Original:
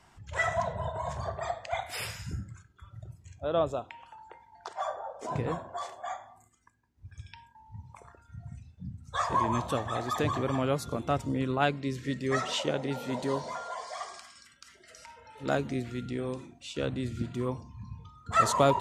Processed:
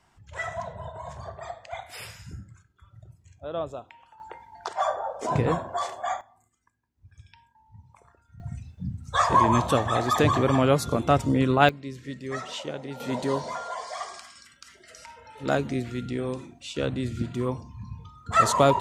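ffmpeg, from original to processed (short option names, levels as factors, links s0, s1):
-af "asetnsamples=n=441:p=0,asendcmd='4.2 volume volume 8dB;6.21 volume volume -5dB;8.4 volume volume 8dB;11.69 volume volume -4dB;13 volume volume 4dB',volume=0.631"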